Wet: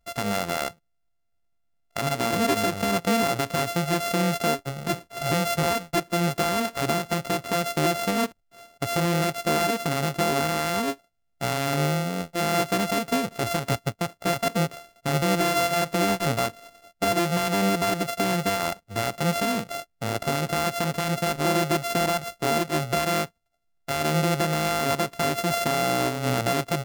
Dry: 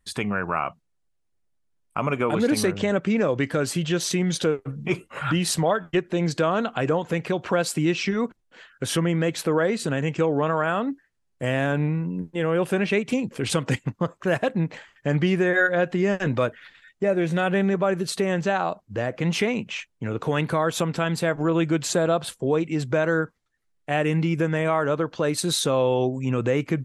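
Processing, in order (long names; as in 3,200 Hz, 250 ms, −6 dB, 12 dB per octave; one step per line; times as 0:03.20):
samples sorted by size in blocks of 64 samples
brickwall limiter −14.5 dBFS, peak gain reduction 5.5 dB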